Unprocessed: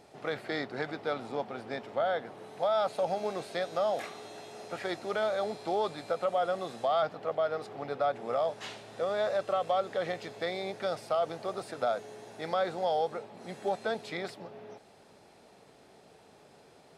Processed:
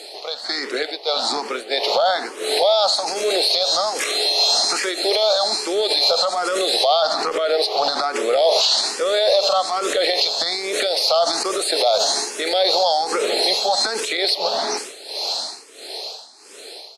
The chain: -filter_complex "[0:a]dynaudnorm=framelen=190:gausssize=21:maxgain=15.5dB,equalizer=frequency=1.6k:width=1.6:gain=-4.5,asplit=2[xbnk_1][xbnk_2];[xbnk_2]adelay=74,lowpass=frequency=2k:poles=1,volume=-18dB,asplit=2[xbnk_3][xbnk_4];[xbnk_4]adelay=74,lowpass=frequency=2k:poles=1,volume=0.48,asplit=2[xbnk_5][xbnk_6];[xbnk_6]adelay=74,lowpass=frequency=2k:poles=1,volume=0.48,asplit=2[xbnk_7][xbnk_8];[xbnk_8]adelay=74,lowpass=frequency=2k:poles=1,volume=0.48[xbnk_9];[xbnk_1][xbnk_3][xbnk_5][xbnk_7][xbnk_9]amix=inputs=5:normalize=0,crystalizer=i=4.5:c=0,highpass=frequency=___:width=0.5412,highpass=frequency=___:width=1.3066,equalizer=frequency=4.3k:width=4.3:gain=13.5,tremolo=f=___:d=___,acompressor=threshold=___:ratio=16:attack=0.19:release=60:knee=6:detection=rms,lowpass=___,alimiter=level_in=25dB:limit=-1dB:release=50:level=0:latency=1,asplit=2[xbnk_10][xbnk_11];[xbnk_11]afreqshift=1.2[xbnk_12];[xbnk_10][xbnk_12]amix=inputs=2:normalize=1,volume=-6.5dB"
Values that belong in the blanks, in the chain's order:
340, 340, 1.5, 0.8, -24dB, 8.5k